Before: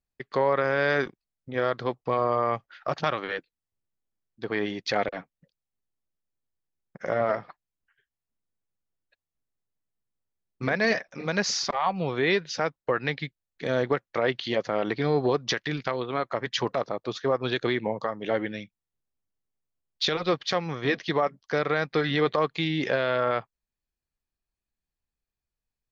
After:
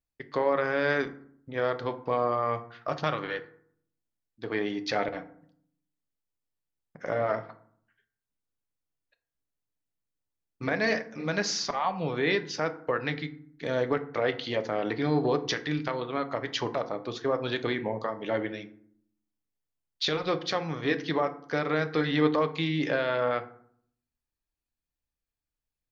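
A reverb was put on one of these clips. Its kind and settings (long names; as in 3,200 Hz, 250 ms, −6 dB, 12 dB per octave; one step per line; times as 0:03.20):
feedback delay network reverb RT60 0.6 s, low-frequency decay 1.45×, high-frequency decay 0.5×, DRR 8 dB
level −3 dB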